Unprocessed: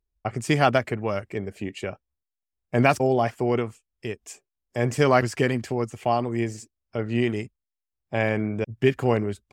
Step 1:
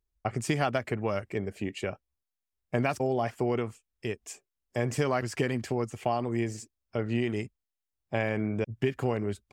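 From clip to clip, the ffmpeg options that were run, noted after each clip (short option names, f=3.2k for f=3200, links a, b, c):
-af "acompressor=threshold=-22dB:ratio=6,volume=-1.5dB"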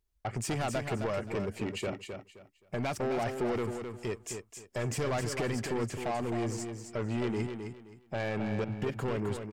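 -af "alimiter=limit=-16.5dB:level=0:latency=1:release=209,asoftclip=type=tanh:threshold=-30.5dB,aecho=1:1:262|524|786:0.447|0.112|0.0279,volume=2.5dB"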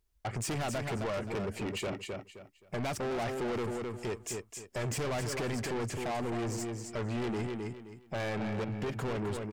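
-af "asoftclip=type=tanh:threshold=-34.5dB,volume=3.5dB"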